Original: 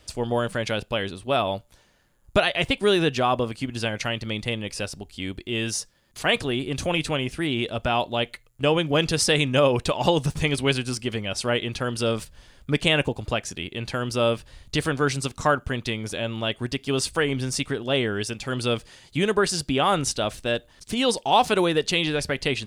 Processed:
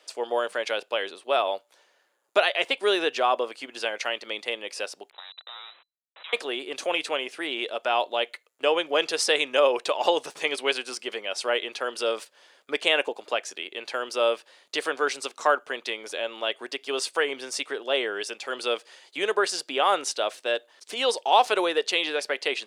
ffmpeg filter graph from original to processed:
ffmpeg -i in.wav -filter_complex "[0:a]asettb=1/sr,asplit=3[link_01][link_02][link_03];[link_01]atrim=end=5.104[link_04];[link_02]atrim=start=5.1:end=6.33,asetpts=PTS-STARTPTS,afade=type=in:duration=0.004:curve=qsin,afade=type=out:start_time=1.226:duration=0.004:curve=qsin,acompressor=threshold=-35dB:ratio=20:attack=3.2:release=140:knee=1:detection=peak,aeval=exprs='val(0)*gte(abs(val(0)),0.01)':channel_layout=same,lowpass=frequency=3400:width_type=q:width=0.5098,lowpass=frequency=3400:width_type=q:width=0.6013,lowpass=frequency=3400:width_type=q:width=0.9,lowpass=frequency=3400:width_type=q:width=2.563,afreqshift=-4000[link_05];[link_03]atrim=start=6.326[link_06];[link_04][link_05]acrossfade=duration=0.004:curve1=hsin:curve2=qsin[link_07];[link_07][link_06]acrossfade=duration=0.004:curve1=qsin:curve2=hsin,highpass=frequency=410:width=0.5412,highpass=frequency=410:width=1.3066,highshelf=frequency=7900:gain=-8.5" out.wav

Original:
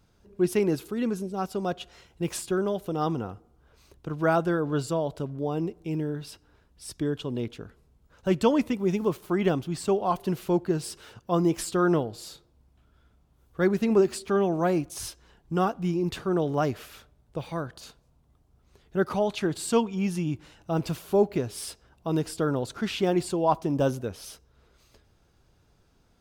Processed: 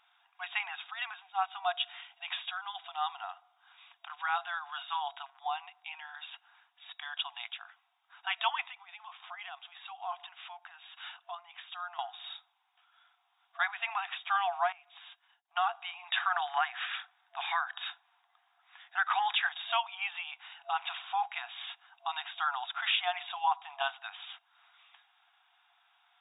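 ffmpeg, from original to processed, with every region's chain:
ffmpeg -i in.wav -filter_complex "[0:a]asettb=1/sr,asplit=3[link_01][link_02][link_03];[link_01]atrim=end=1.744[link_04];[link_02]atrim=start=1.74:end=4.81,asetpts=PTS-STARTPTS,afade=type=in:duration=0.004:curve=qsin,afade=type=out:start_time=3.066:duration=0.004:curve=qsin,equalizer=frequency=4500:width=0.89:gain=4.5,acompressor=threshold=-33dB:ratio=2:attack=3.2:release=140:knee=1:detection=peak[link_05];[link_03]atrim=start=4.806[link_06];[link_04][link_05]acrossfade=duration=0.004:curve1=hsin:curve2=qsin[link_07];[link_07][link_06]acrossfade=duration=0.004:curve1=qsin:curve2=hsin,asettb=1/sr,asplit=3[link_08][link_09][link_10];[link_08]atrim=end=8.634[link_11];[link_09]atrim=start=8.63:end=11.99,asetpts=PTS-STARTPTS,afade=type=in:duration=0.004:curve=qsin,afade=type=out:start_time=3.356:duration=0.004:curve=qsin,asubboost=boost=10:cutoff=110,acompressor=threshold=-42dB:ratio=2.5:attack=3.2:release=140:knee=1:detection=peak[link_12];[link_10]atrim=start=11.986[link_13];[link_11][link_12]acrossfade=duration=0.004:curve1=hsin:curve2=qsin[link_14];[link_14][link_13]acrossfade=duration=0.004:curve1=qsin:curve2=hsin,asettb=1/sr,asplit=3[link_15][link_16][link_17];[link_15]atrim=end=14.724[link_18];[link_16]atrim=start=14.72:end=15.56,asetpts=PTS-STARTPTS,afade=type=in:duration=0.004:curve=qsin,afade=type=out:start_time=0.836:duration=0.004:curve=qsin,agate=range=-33dB:threshold=-49dB:ratio=3:release=100:detection=peak,acompressor=threshold=-50dB:ratio=2:attack=3.2:release=140:knee=1:detection=peak[link_19];[link_17]atrim=start=15.556[link_20];[link_18][link_19]acrossfade=duration=0.004:curve1=hsin:curve2=qsin[link_21];[link_21][link_20]acrossfade=duration=0.004:curve1=qsin:curve2=hsin,asettb=1/sr,asplit=3[link_22][link_23][link_24];[link_22]atrim=end=16.124[link_25];[link_23]atrim=start=16.12:end=19.49,asetpts=PTS-STARTPTS,afade=type=in:duration=0.004:curve=qsin,afade=type=out:start_time=3.366:duration=0.004:curve=qsin,acontrast=39,equalizer=frequency=1700:width=3:gain=7,acrossover=split=780[link_26][link_27];[link_26]aeval=exprs='val(0)*(1-0.5/2+0.5/2*cos(2*PI*3.2*n/s))':channel_layout=same[link_28];[link_27]aeval=exprs='val(0)*(1-0.5/2-0.5/2*cos(2*PI*3.2*n/s))':channel_layout=same[link_29];[link_28][link_29]amix=inputs=2:normalize=0[link_30];[link_24]atrim=start=19.486[link_31];[link_25][link_30]acrossfade=duration=0.004:curve1=hsin:curve2=qsin[link_32];[link_32][link_31]acrossfade=duration=0.004:curve1=qsin:curve2=hsin,afftfilt=real='re*between(b*sr/4096,680,3800)':imag='im*between(b*sr/4096,680,3800)':win_size=4096:overlap=0.75,highshelf=frequency=2500:gain=9.5,alimiter=limit=-21dB:level=0:latency=1:release=227,volume=2.5dB" out.wav

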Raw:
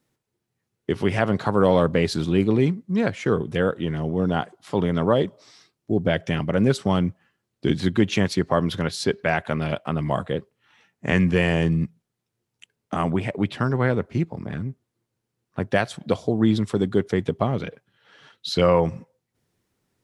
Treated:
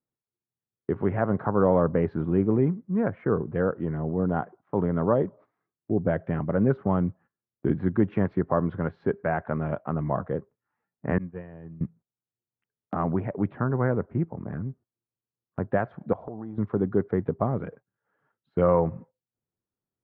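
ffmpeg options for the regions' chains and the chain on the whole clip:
ffmpeg -i in.wav -filter_complex "[0:a]asettb=1/sr,asplit=3[link_01][link_02][link_03];[link_01]atrim=end=11.184[link_04];[link_02]atrim=start=11.18:end=11.81,asetpts=PTS-STARTPTS,afade=type=in:duration=0.004:curve=qsin,afade=type=out:start_time=0.626:duration=0.004:curve=qsin,agate=range=-33dB:threshold=-9dB:ratio=3:release=100:detection=peak,highpass=59[link_05];[link_03]atrim=start=11.806[link_06];[link_04][link_05]acrossfade=duration=0.004:curve1=hsin:curve2=qsin[link_07];[link_07][link_06]acrossfade=duration=0.004:curve1=qsin:curve2=hsin,asettb=1/sr,asplit=3[link_08][link_09][link_10];[link_08]atrim=end=16.134[link_11];[link_09]atrim=start=16.13:end=16.58,asetpts=PTS-STARTPTS,afade=type=in:duration=0.004:curve=qsin,afade=type=out:start_time=0.446:duration=0.004:curve=qsin,acompressor=threshold=-33dB:ratio=5:attack=3.2:release=140:knee=1:detection=peak,equalizer=frequency=820:width_type=o:width=0.95:gain=9.5[link_12];[link_10]atrim=start=16.576[link_13];[link_11][link_12]acrossfade=duration=0.004:curve1=hsin:curve2=qsin[link_14];[link_14][link_13]acrossfade=duration=0.004:curve1=qsin:curve2=hsin,lowpass=frequency=1500:width=0.5412,lowpass=frequency=1500:width=1.3066,deesser=0.9,agate=range=-15dB:threshold=-45dB:ratio=16:detection=peak,volume=-3dB" out.wav

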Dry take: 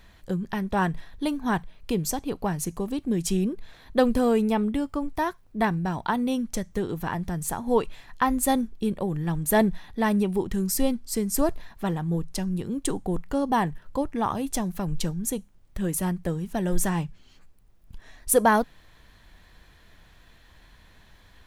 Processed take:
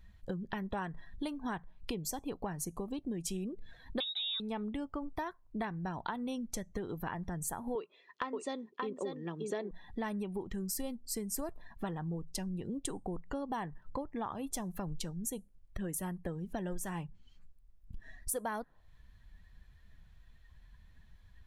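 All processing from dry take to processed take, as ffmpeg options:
ffmpeg -i in.wav -filter_complex "[0:a]asettb=1/sr,asplit=3[link_01][link_02][link_03];[link_01]atrim=end=4.004[link_04];[link_02]atrim=start=4:end=4.4,asetpts=PTS-STARTPTS,afade=type=in:duration=0.004:curve=qsin,afade=type=out:start_time=0.396:duration=0.004:curve=qsin,highpass=56,lowpass=frequency=3400:width_type=q:width=0.5098,lowpass=frequency=3400:width_type=q:width=0.6013,lowpass=frequency=3400:width_type=q:width=0.9,lowpass=frequency=3400:width_type=q:width=2.563,afreqshift=-4000[link_05];[link_03]atrim=start=4.396[link_06];[link_04][link_05]acrossfade=duration=0.004:curve1=hsin:curve2=qsin[link_07];[link_07][link_06]acrossfade=duration=0.004:curve1=qsin:curve2=hsin,asettb=1/sr,asplit=3[link_08][link_09][link_10];[link_08]atrim=end=7.754[link_11];[link_09]atrim=start=7.75:end=9.71,asetpts=PTS-STARTPTS,afade=type=in:duration=0.004:curve=qsin,afade=type=out:start_time=1.956:duration=0.004:curve=qsin,highpass=frequency=200:width=0.5412,highpass=frequency=200:width=1.3066,equalizer=frequency=240:width_type=q:width=4:gain=-7,equalizer=frequency=400:width_type=q:width=4:gain=8,equalizer=frequency=810:width_type=q:width=4:gain=-8,equalizer=frequency=1600:width_type=q:width=4:gain=-5,lowpass=frequency=6200:width=0.5412,lowpass=frequency=6200:width=1.3066,aecho=1:1:579:0.473,atrim=end_sample=86436[link_12];[link_10]atrim=start=9.706[link_13];[link_11][link_12]acrossfade=duration=0.004:curve1=hsin:curve2=qsin[link_14];[link_14][link_13]acrossfade=duration=0.004:curve1=qsin:curve2=hsin,afftdn=noise_reduction=18:noise_floor=-47,lowshelf=frequency=400:gain=-4,acompressor=threshold=-38dB:ratio=6,volume=2dB" out.wav

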